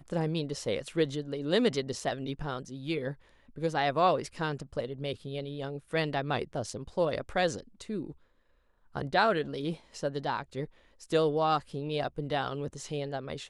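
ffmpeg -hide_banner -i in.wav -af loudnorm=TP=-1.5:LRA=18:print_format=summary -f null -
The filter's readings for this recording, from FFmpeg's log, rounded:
Input Integrated:    -32.0 LUFS
Input True Peak:     -12.7 dBTP
Input LRA:             1.6 LU
Input Threshold:     -42.3 LUFS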